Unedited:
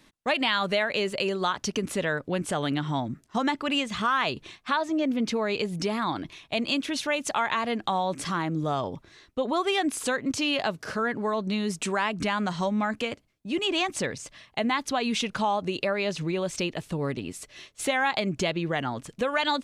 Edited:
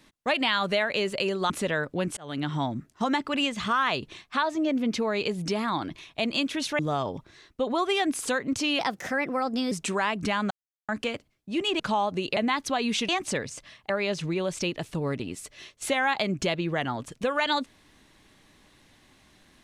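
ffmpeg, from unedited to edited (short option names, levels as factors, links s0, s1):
-filter_complex "[0:a]asplit=12[s0][s1][s2][s3][s4][s5][s6][s7][s8][s9][s10][s11];[s0]atrim=end=1.502[s12];[s1]atrim=start=1.838:end=2.51,asetpts=PTS-STARTPTS,afade=t=out:st=0.668:d=0.004:c=hsin[s13];[s2]atrim=start=2.51:end=7.132,asetpts=PTS-STARTPTS,afade=t=in:d=0.32[s14];[s3]atrim=start=8.568:end=10.574[s15];[s4]atrim=start=10.57:end=11.69,asetpts=PTS-STARTPTS,asetrate=53361,aresample=44100[s16];[s5]atrim=start=11.686:end=12.48,asetpts=PTS-STARTPTS,afade=t=out:st=0.79:d=0.004:c=hsin[s17];[s6]atrim=start=12.48:end=12.86,asetpts=PTS-STARTPTS,volume=0[s18];[s7]atrim=start=12.86:end=13.772,asetpts=PTS-STARTPTS,afade=t=in:d=0.004:c=hsin[s19];[s8]atrim=start=15.298:end=15.872[s20];[s9]atrim=start=14.578:end=15.302[s21];[s10]atrim=start=13.768:end=14.582[s22];[s11]atrim=start=15.868[s23];[s13][s14]concat=n=2:v=0:a=1[s24];[s12][s24]acrossfade=d=0.004:c1=hsin:c2=hsin[s25];[s25][s15]acrossfade=d=0.004:c1=hsin:c2=hsin[s26];[s26][s16]acrossfade=d=0.004:c1=hsin:c2=hsin[s27];[s17][s18][s19]concat=n=3:v=0:a=1[s28];[s27][s28]acrossfade=d=0.004:c1=hsin:c2=hsin[s29];[s29][s20]acrossfade=d=0.004:c1=hsin:c2=hsin[s30];[s30][s21]acrossfade=d=0.004:c1=hsin:c2=hsin[s31];[s31][s22]acrossfade=d=0.004:c1=hsin:c2=hsin[s32];[s32][s23]acrossfade=d=0.004:c1=hsin:c2=hsin"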